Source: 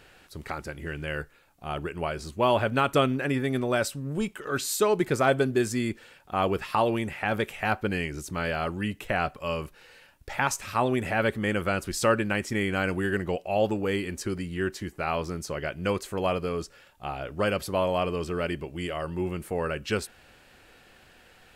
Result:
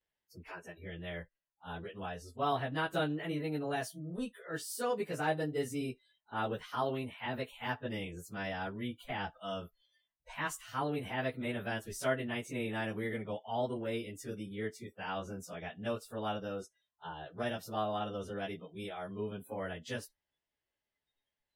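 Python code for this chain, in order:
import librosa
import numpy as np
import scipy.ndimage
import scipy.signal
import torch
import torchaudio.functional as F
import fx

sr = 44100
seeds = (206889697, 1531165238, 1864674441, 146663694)

y = fx.pitch_bins(x, sr, semitones=2.5)
y = fx.noise_reduce_blind(y, sr, reduce_db=25)
y = F.gain(torch.from_numpy(y), -8.0).numpy()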